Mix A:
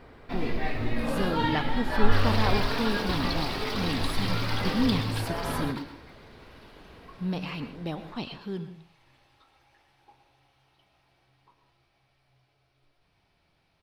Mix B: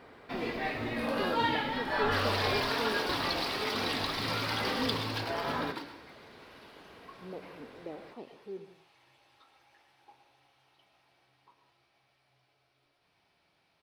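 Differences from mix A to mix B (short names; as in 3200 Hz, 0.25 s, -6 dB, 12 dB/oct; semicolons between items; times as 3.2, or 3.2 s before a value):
speech: add band-pass 450 Hz, Q 2.3; master: add HPF 300 Hz 6 dB/oct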